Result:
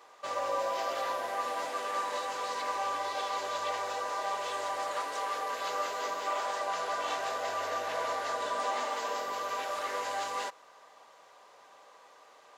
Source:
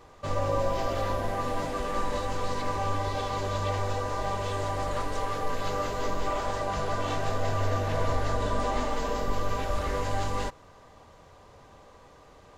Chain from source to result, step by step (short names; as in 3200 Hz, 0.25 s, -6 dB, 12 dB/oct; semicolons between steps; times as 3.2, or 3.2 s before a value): HPF 660 Hz 12 dB/oct